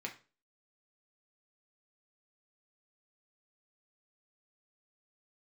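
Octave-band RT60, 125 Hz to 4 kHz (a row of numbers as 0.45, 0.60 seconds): 0.40, 0.40, 0.35, 0.35, 0.30, 0.30 seconds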